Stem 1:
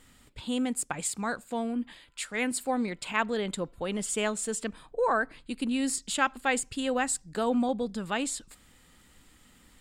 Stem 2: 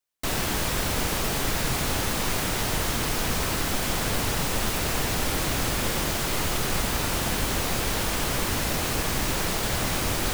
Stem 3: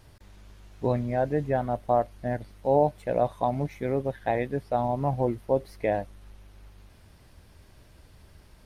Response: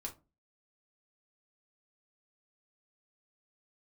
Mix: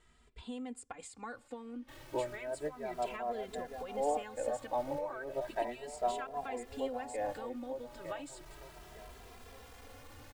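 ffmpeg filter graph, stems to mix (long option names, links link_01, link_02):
-filter_complex "[0:a]lowpass=frequency=9700:width=0.5412,lowpass=frequency=9700:width=1.3066,volume=-2.5dB,asplit=2[link_01][link_02];[1:a]asoftclip=type=hard:threshold=-27dB,adelay=1650,volume=-18.5dB[link_03];[2:a]highpass=420,adelay=1300,volume=-1dB,asplit=2[link_04][link_05];[link_05]volume=-14dB[link_06];[link_02]apad=whole_len=438854[link_07];[link_04][link_07]sidechaincompress=threshold=-39dB:ratio=8:attack=40:release=180[link_08];[link_01][link_03]amix=inputs=2:normalize=0,equalizer=frequency=190:width=4.1:gain=-14.5,acompressor=threshold=-37dB:ratio=6,volume=0dB[link_09];[link_06]aecho=0:1:905|1810|2715|3620|4525:1|0.38|0.144|0.0549|0.0209[link_10];[link_08][link_09][link_10]amix=inputs=3:normalize=0,highshelf=frequency=2700:gain=-8,asplit=2[link_11][link_12];[link_12]adelay=2.6,afreqshift=0.34[link_13];[link_11][link_13]amix=inputs=2:normalize=1"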